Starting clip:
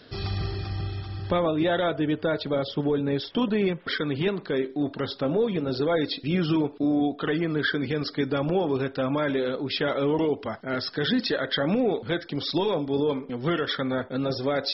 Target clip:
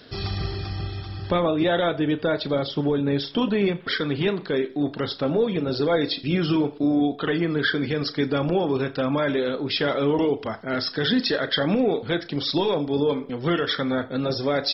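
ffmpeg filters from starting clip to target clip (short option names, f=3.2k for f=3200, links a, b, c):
-filter_complex "[0:a]highshelf=f=4.9k:g=4.5,asplit=2[a][b];[b]adelay=35,volume=-13.5dB[c];[a][c]amix=inputs=2:normalize=0,asplit=2[d][e];[e]aecho=0:1:85|170|255:0.075|0.0277|0.0103[f];[d][f]amix=inputs=2:normalize=0,volume=2dB"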